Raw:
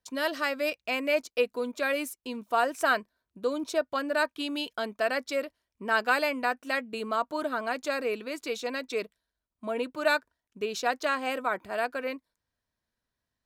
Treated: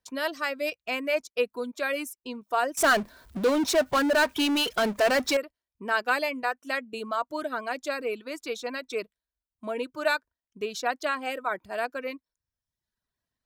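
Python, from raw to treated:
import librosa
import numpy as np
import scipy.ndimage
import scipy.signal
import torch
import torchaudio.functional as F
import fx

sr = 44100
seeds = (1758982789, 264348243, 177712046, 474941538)

y = fx.dereverb_blind(x, sr, rt60_s=0.87)
y = fx.power_curve(y, sr, exponent=0.5, at=(2.77, 5.37))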